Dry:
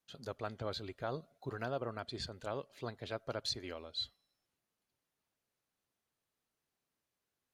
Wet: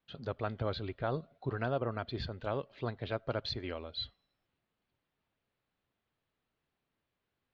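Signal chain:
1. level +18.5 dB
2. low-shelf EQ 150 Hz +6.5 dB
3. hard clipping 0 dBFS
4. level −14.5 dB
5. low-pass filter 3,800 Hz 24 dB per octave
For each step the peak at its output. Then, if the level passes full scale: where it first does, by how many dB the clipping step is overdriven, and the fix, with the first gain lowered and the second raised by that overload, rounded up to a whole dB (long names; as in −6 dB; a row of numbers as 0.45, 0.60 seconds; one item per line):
−5.5, −5.5, −5.5, −20.0, −20.0 dBFS
no step passes full scale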